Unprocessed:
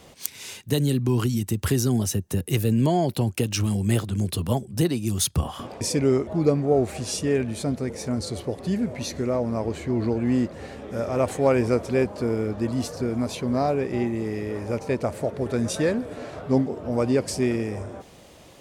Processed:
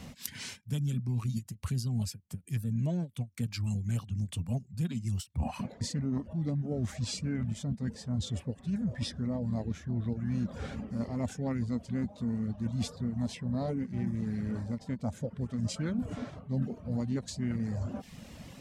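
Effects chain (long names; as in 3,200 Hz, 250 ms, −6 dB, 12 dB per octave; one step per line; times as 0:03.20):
reverb reduction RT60 0.58 s
low shelf with overshoot 290 Hz +6 dB, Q 3
formants moved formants −3 semitones
reversed playback
downward compressor 5 to 1, threshold −31 dBFS, peak gain reduction 18.5 dB
reversed playback
every ending faded ahead of time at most 380 dB per second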